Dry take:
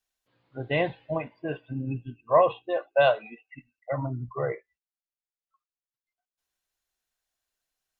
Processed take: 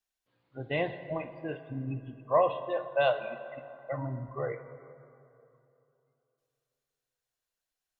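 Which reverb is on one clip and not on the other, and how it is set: plate-style reverb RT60 2.9 s, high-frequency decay 0.5×, DRR 10 dB; trim -5 dB

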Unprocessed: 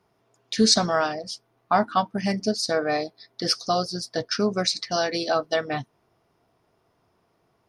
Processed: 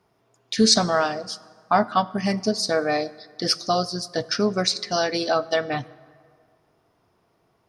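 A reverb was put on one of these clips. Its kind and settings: plate-style reverb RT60 2 s, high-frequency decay 0.6×, DRR 18.5 dB; trim +1.5 dB

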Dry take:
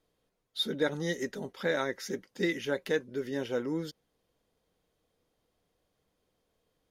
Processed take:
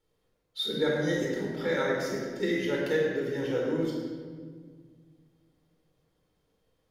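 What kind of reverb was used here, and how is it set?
simulated room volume 2300 m³, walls mixed, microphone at 4.3 m; trim -4.5 dB

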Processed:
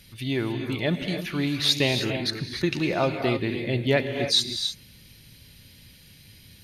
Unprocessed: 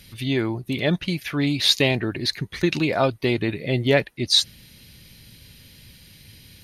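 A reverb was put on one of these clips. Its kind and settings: gated-style reverb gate 330 ms rising, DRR 5.5 dB; trim -4 dB

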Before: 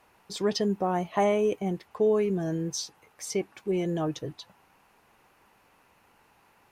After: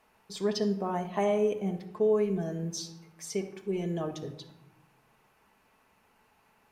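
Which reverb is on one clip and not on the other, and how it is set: simulated room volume 2500 m³, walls furnished, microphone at 1.5 m; trim -5 dB

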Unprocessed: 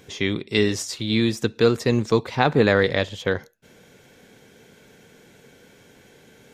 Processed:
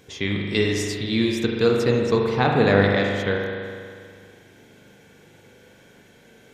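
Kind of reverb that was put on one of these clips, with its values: spring tank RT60 2.2 s, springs 40 ms, chirp 45 ms, DRR 0 dB; trim -2.5 dB

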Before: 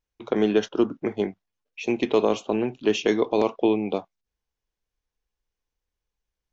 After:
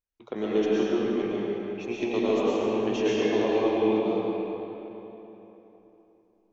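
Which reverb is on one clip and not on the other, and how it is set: algorithmic reverb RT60 3.5 s, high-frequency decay 0.7×, pre-delay 75 ms, DRR -8 dB; trim -10.5 dB

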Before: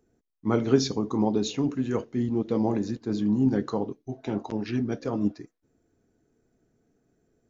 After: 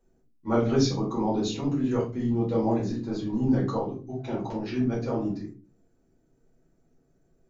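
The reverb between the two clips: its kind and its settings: simulated room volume 160 m³, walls furnished, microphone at 4.7 m; trim -9 dB

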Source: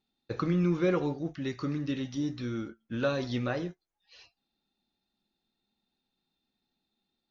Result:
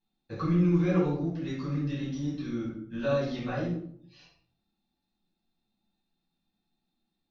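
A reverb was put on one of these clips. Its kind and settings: simulated room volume 850 m³, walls furnished, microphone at 8.6 m; trim -11.5 dB

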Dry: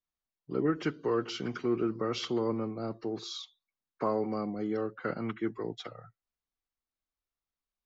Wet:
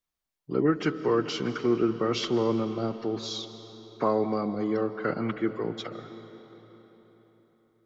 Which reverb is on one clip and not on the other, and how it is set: algorithmic reverb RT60 4.2 s, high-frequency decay 0.75×, pre-delay 110 ms, DRR 11.5 dB; trim +5 dB

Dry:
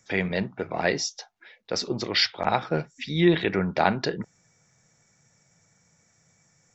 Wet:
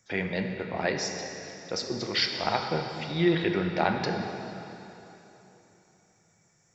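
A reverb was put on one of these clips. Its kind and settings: plate-style reverb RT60 3.4 s, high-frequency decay 0.9×, DRR 3.5 dB; trim -4.5 dB

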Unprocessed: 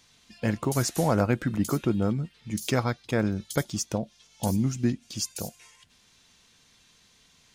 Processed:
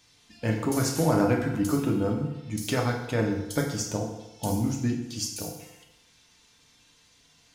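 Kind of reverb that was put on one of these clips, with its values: FDN reverb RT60 0.99 s, low-frequency decay 0.85×, high-frequency decay 0.8×, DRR -0.5 dB; trim -3 dB

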